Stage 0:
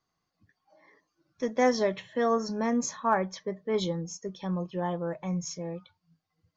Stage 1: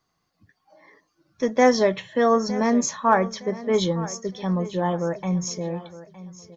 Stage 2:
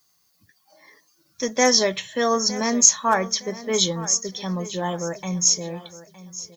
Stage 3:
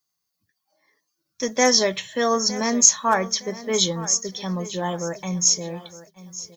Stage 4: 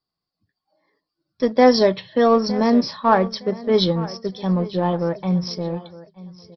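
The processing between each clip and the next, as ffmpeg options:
ffmpeg -i in.wav -af "aecho=1:1:913|1826|2739:0.15|0.0479|0.0153,volume=7dB" out.wav
ffmpeg -i in.wav -af "highshelf=frequency=4700:gain=7.5,crystalizer=i=4.5:c=0,volume=-3.5dB" out.wav
ffmpeg -i in.wav -af "agate=range=-14dB:threshold=-47dB:ratio=16:detection=peak" out.wav
ffmpeg -i in.wav -filter_complex "[0:a]equalizer=frequency=2500:width_type=o:width=2.1:gain=-12.5,asplit=2[link_01][link_02];[link_02]aeval=exprs='sgn(val(0))*max(abs(val(0))-0.0211,0)':channel_layout=same,volume=-7dB[link_03];[link_01][link_03]amix=inputs=2:normalize=0,aresample=11025,aresample=44100,volume=5.5dB" out.wav

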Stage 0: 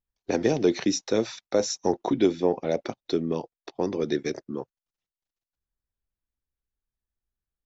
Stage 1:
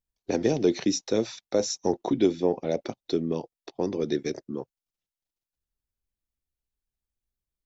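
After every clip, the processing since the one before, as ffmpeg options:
ffmpeg -i in.wav -af "equalizer=frequency=1400:width=0.72:gain=-5" out.wav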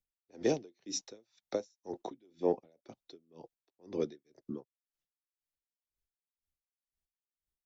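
ffmpeg -i in.wav -filter_complex "[0:a]acrossover=split=240|550|2100[link_01][link_02][link_03][link_04];[link_01]alimiter=level_in=9dB:limit=-24dB:level=0:latency=1:release=118,volume=-9dB[link_05];[link_05][link_02][link_03][link_04]amix=inputs=4:normalize=0,aeval=exprs='val(0)*pow(10,-39*(0.5-0.5*cos(2*PI*2*n/s))/20)':channel_layout=same,volume=-3dB" out.wav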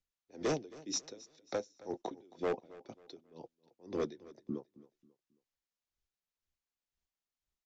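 ffmpeg -i in.wav -af "aresample=16000,volume=29.5dB,asoftclip=hard,volume=-29.5dB,aresample=44100,aecho=1:1:270|540|810:0.106|0.0371|0.013,volume=1.5dB" out.wav

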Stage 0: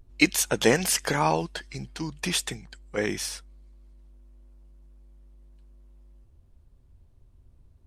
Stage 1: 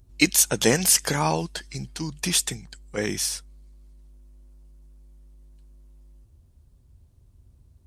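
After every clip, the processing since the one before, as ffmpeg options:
ffmpeg -i in.wav -af "highpass=43,bass=frequency=250:gain=5,treble=frequency=4000:gain=9,volume=-1dB" out.wav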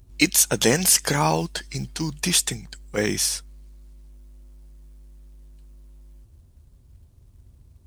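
ffmpeg -i in.wav -filter_complex "[0:a]asplit=2[link_01][link_02];[link_02]alimiter=limit=-13dB:level=0:latency=1:release=344,volume=-0.5dB[link_03];[link_01][link_03]amix=inputs=2:normalize=0,acrusher=bits=7:mode=log:mix=0:aa=0.000001,volume=-2dB" out.wav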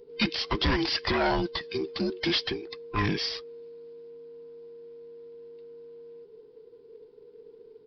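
ffmpeg -i in.wav -af "afftfilt=real='real(if(between(b,1,1008),(2*floor((b-1)/24)+1)*24-b,b),0)':imag='imag(if(between(b,1,1008),(2*floor((b-1)/24)+1)*24-b,b),0)*if(between(b,1,1008),-1,1)':win_size=2048:overlap=0.75,aresample=11025,asoftclip=type=tanh:threshold=-19.5dB,aresample=44100" out.wav

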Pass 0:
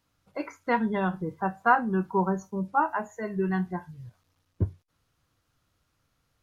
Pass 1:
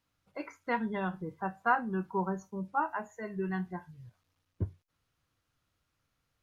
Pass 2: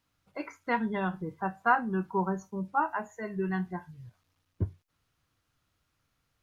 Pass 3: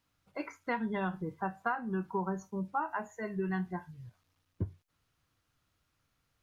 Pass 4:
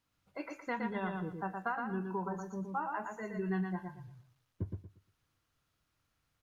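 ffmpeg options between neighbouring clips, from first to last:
ffmpeg -i in.wav -af "equalizer=frequency=2400:width=1:gain=3,volume=-7dB" out.wav
ffmpeg -i in.wav -af "equalizer=frequency=520:width_type=o:width=0.26:gain=-2.5,volume=3dB" out.wav
ffmpeg -i in.wav -af "acompressor=threshold=-28dB:ratio=6,volume=-1dB" out.wav
ffmpeg -i in.wav -af "aecho=1:1:117|234|351|468:0.596|0.155|0.0403|0.0105,volume=-3.5dB" out.wav

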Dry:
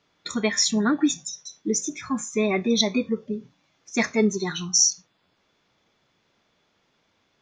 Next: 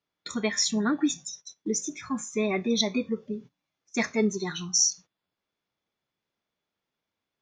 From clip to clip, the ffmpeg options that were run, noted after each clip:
ffmpeg -i in.wav -af "agate=range=-14dB:threshold=-40dB:ratio=16:detection=peak,volume=-4dB" out.wav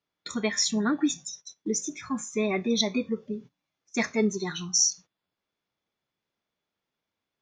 ffmpeg -i in.wav -af anull out.wav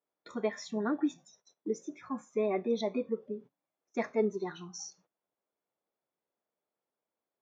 ffmpeg -i in.wav -af "bandpass=frequency=570:width_type=q:width=1.1:csg=0" out.wav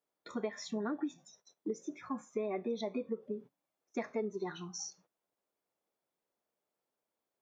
ffmpeg -i in.wav -af "acompressor=threshold=-34dB:ratio=5,volume=1dB" out.wav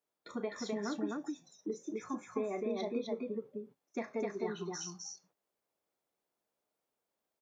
ffmpeg -i in.wav -af "aecho=1:1:34.99|256.6:0.282|0.794,volume=-1.5dB" out.wav

